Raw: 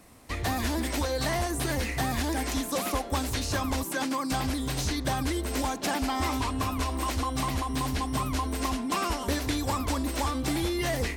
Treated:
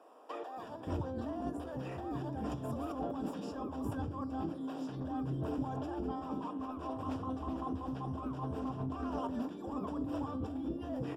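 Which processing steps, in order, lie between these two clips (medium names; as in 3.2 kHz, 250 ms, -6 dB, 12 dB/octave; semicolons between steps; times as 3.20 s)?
high-pass 83 Hz 24 dB/octave; peaking EQ 340 Hz +4 dB 1.9 oct; hum notches 60/120/180/240/300/360 Hz; compressor with a negative ratio -34 dBFS, ratio -1; boxcar filter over 21 samples; bands offset in time highs, lows 570 ms, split 430 Hz; reverberation RT60 0.50 s, pre-delay 6 ms, DRR 11.5 dB; 6.54–9.28 s: loudspeaker Doppler distortion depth 0.15 ms; trim -2.5 dB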